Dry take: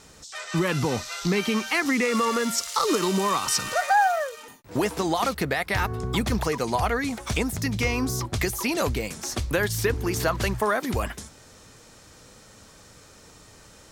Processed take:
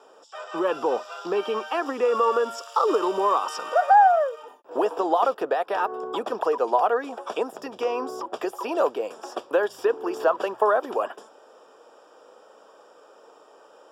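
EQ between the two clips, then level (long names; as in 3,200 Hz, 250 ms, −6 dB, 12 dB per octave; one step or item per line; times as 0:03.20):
moving average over 21 samples
high-pass filter 430 Hz 24 dB per octave
+7.5 dB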